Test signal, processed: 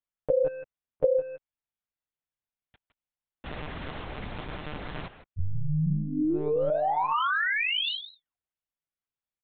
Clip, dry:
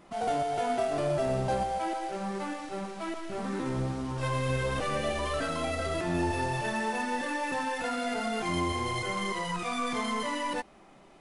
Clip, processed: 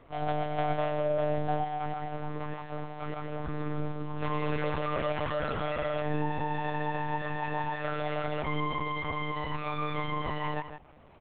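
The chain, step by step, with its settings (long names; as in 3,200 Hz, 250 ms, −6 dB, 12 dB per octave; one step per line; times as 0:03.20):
high-shelf EQ 3,000 Hz −6.5 dB
far-end echo of a speakerphone 160 ms, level −9 dB
one-pitch LPC vocoder at 8 kHz 150 Hz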